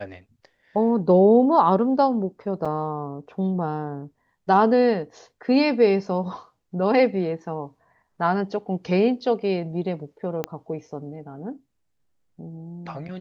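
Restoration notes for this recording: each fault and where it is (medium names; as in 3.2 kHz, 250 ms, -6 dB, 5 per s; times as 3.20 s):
2.65–2.66 s: dropout 5.3 ms
10.44 s: pop -12 dBFS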